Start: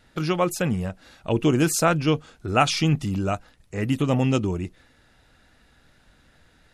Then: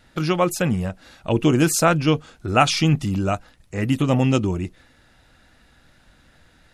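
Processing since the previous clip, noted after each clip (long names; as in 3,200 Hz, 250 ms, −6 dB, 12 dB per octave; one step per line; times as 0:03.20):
notch filter 430 Hz, Q 12
level +3 dB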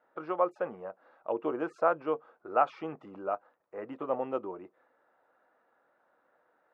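Chebyshev band-pass filter 460–1,200 Hz, order 2
level −6.5 dB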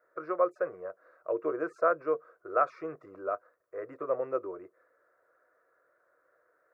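phaser with its sweep stopped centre 840 Hz, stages 6
level +2.5 dB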